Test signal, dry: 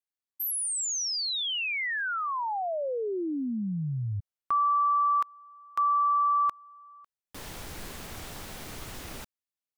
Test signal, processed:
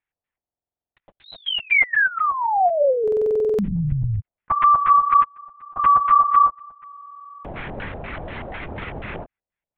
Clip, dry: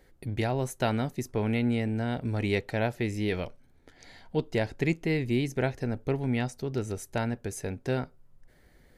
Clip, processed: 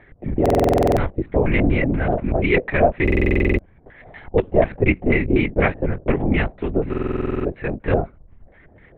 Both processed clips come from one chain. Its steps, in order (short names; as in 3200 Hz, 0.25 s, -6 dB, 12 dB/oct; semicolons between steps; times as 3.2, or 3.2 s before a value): LFO low-pass square 4.1 Hz 680–2100 Hz; LPC vocoder at 8 kHz whisper; stuck buffer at 0.41/3.03/6.89, samples 2048, times 11; gain +8.5 dB